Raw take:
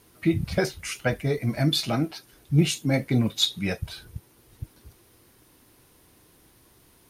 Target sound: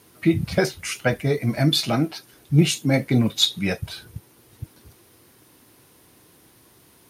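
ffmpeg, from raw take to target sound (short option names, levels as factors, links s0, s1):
-af "highpass=90,volume=1.58"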